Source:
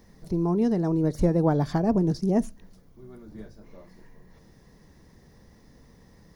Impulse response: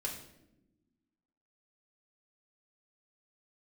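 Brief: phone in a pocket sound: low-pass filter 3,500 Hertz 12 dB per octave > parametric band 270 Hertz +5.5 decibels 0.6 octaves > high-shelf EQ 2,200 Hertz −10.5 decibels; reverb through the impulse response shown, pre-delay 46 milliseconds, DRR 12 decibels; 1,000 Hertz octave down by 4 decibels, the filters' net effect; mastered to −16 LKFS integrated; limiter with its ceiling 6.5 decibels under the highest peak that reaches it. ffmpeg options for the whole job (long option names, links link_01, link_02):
-filter_complex "[0:a]equalizer=frequency=1000:width_type=o:gain=-4,alimiter=limit=-18dB:level=0:latency=1,asplit=2[link_01][link_02];[1:a]atrim=start_sample=2205,adelay=46[link_03];[link_02][link_03]afir=irnorm=-1:irlink=0,volume=-13dB[link_04];[link_01][link_04]amix=inputs=2:normalize=0,lowpass=3500,equalizer=frequency=270:width_type=o:width=0.6:gain=5.5,highshelf=frequency=2200:gain=-10.5,volume=8.5dB"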